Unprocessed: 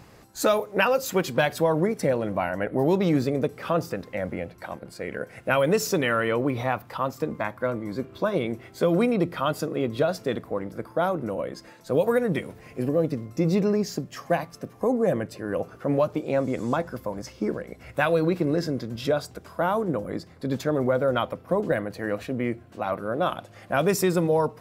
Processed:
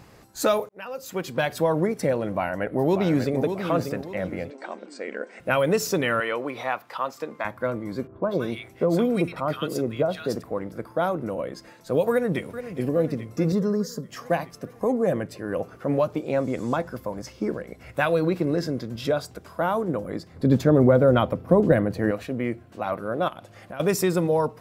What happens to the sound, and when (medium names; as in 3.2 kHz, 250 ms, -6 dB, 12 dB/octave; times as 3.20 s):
0.69–1.64 s: fade in
2.33–3.38 s: echo throw 590 ms, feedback 35%, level -7.5 dB
4.50–5.40 s: brick-wall FIR band-pass 200–8900 Hz
6.20–7.45 s: frequency weighting A
8.07–10.43 s: bands offset in time lows, highs 160 ms, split 1.4 kHz
12.11–12.78 s: echo throw 420 ms, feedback 70%, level -11.5 dB
13.52–14.09 s: static phaser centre 490 Hz, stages 8
20.34–22.11 s: bass shelf 500 Hz +11 dB
23.28–23.80 s: compression 4:1, threshold -35 dBFS